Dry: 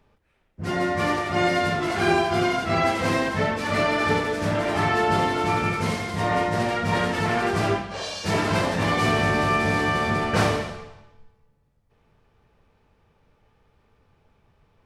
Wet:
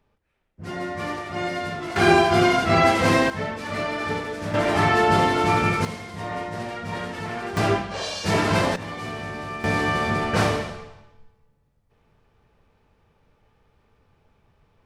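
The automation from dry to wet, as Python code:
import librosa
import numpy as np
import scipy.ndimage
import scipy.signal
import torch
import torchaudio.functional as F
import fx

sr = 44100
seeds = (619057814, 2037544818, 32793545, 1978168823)

y = fx.gain(x, sr, db=fx.steps((0.0, -6.0), (1.96, 4.5), (3.3, -5.0), (4.54, 3.0), (5.85, -7.5), (7.57, 2.0), (8.76, -11.0), (9.64, 0.0)))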